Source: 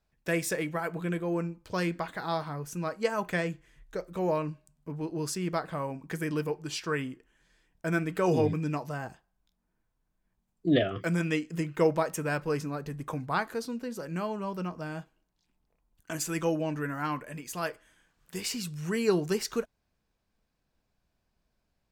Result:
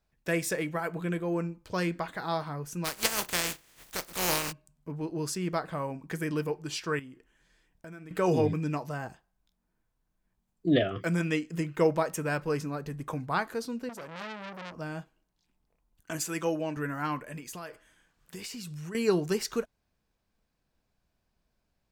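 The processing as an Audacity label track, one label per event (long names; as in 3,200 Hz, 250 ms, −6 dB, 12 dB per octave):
2.840000	4.510000	compressing power law on the bin magnitudes exponent 0.26
6.990000	8.110000	downward compressor 4 to 1, threshold −45 dBFS
13.890000	14.740000	saturating transformer saturates under 2,900 Hz
16.210000	16.770000	high-pass filter 230 Hz 6 dB per octave
17.370000	18.950000	downward compressor, threshold −37 dBFS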